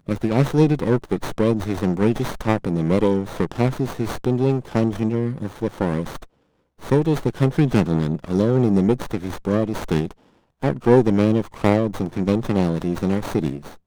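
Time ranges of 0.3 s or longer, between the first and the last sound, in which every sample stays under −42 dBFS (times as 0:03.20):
0:06.26–0:06.79
0:10.13–0:10.63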